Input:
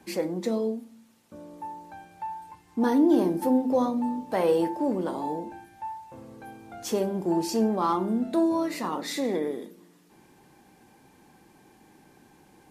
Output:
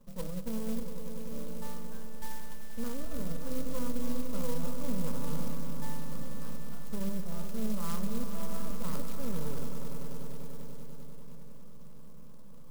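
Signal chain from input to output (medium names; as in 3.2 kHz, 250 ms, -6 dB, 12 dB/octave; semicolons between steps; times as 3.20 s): local Wiener filter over 25 samples; half-wave rectifier; reverse; compression 6:1, threshold -38 dBFS, peak gain reduction 18.5 dB; reverse; resonant low shelf 220 Hz +7 dB, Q 1.5; static phaser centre 510 Hz, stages 8; on a send: echo with a slow build-up 98 ms, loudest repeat 5, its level -11.5 dB; on the sum: sampling jitter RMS 0.11 ms; trim +5 dB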